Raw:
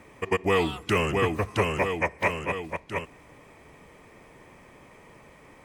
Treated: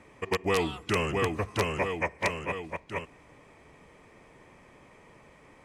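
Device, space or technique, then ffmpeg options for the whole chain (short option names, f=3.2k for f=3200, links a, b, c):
overflowing digital effects unit: -af "aeval=exprs='(mod(4.47*val(0)+1,2)-1)/4.47':c=same,lowpass=9.8k,volume=-3.5dB"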